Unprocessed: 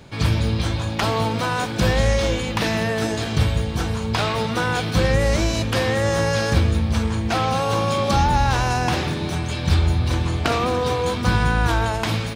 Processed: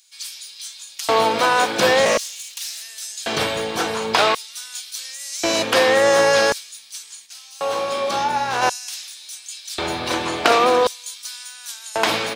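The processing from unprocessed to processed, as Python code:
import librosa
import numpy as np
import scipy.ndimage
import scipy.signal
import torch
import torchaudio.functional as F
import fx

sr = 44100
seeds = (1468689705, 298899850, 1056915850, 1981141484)

y = fx.lower_of_two(x, sr, delay_ms=4.3, at=(2.05, 2.82))
y = fx.filter_lfo_highpass(y, sr, shape='square', hz=0.46, low_hz=440.0, high_hz=6700.0, q=0.94)
y = fx.comb_fb(y, sr, f0_hz=61.0, decay_s=0.44, harmonics='all', damping=0.0, mix_pct=80, at=(7.25, 8.61), fade=0.02)
y = F.gain(torch.from_numpy(y), 6.5).numpy()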